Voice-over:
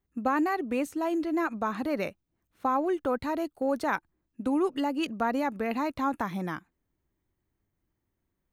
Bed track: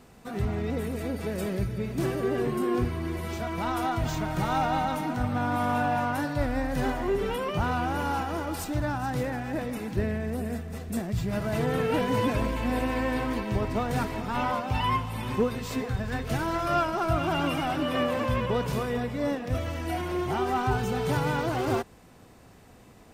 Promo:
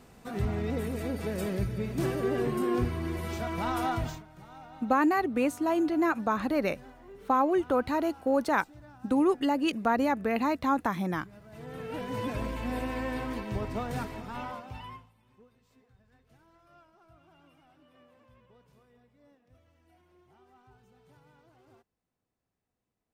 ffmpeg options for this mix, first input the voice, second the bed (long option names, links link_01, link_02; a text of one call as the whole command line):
ffmpeg -i stem1.wav -i stem2.wav -filter_complex "[0:a]adelay=4650,volume=2dB[link_01];[1:a]volume=15.5dB,afade=type=out:start_time=3.95:duration=0.28:silence=0.0891251,afade=type=in:start_time=11.49:duration=1.02:silence=0.141254,afade=type=out:start_time=13.88:duration=1.26:silence=0.0375837[link_02];[link_01][link_02]amix=inputs=2:normalize=0" out.wav